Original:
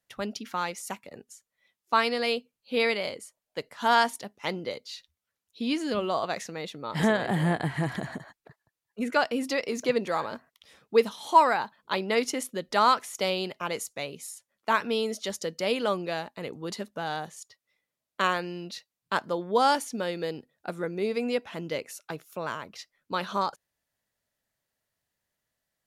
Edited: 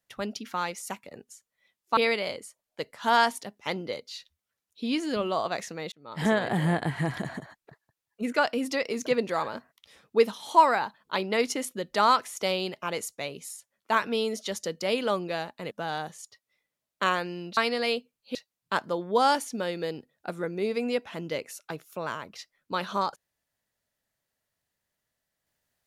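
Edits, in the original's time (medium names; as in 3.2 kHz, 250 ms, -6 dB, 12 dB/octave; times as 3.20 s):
1.97–2.75 s: move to 18.75 s
6.70–7.11 s: fade in
16.49–16.89 s: delete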